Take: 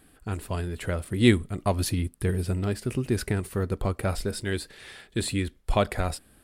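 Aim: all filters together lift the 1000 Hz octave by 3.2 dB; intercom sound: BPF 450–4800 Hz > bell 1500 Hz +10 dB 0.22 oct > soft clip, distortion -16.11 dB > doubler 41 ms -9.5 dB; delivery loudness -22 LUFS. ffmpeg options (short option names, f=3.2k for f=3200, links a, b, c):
-filter_complex "[0:a]highpass=450,lowpass=4.8k,equalizer=f=1k:t=o:g=3.5,equalizer=f=1.5k:t=o:w=0.22:g=10,asoftclip=threshold=-15dB,asplit=2[a][b];[b]adelay=41,volume=-9.5dB[c];[a][c]amix=inputs=2:normalize=0,volume=10.5dB"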